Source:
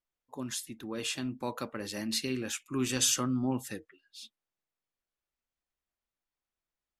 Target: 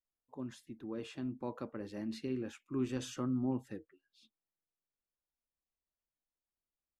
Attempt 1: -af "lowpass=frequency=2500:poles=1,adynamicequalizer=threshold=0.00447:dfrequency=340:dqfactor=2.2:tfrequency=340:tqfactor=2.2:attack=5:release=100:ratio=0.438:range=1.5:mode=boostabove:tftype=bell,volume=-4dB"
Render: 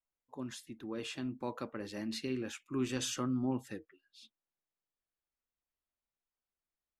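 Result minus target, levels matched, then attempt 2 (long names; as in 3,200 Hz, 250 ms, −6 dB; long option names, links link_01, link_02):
2,000 Hz band +5.5 dB
-af "lowpass=frequency=750:poles=1,adynamicequalizer=threshold=0.00447:dfrequency=340:dqfactor=2.2:tfrequency=340:tqfactor=2.2:attack=5:release=100:ratio=0.438:range=1.5:mode=boostabove:tftype=bell,volume=-4dB"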